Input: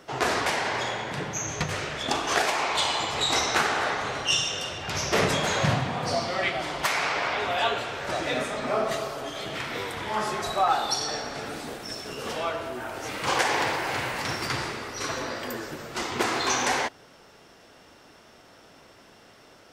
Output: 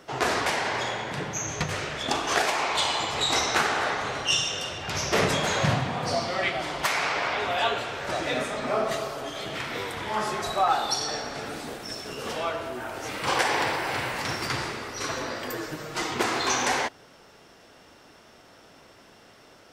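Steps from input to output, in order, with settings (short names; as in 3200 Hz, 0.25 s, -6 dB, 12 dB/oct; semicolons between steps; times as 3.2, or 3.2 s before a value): 13.19–14.11 notch 6600 Hz, Q 11; 15.49–16.14 comb 6.4 ms, depth 62%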